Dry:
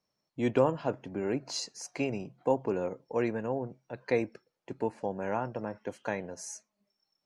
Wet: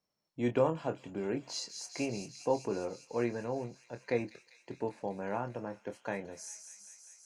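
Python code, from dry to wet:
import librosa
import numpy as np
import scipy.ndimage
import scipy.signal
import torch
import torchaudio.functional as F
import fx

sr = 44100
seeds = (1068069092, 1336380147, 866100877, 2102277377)

y = fx.doubler(x, sr, ms=25.0, db=-8.5)
y = fx.echo_wet_highpass(y, sr, ms=198, feedback_pct=79, hz=4400.0, wet_db=-5)
y = y * librosa.db_to_amplitude(-4.0)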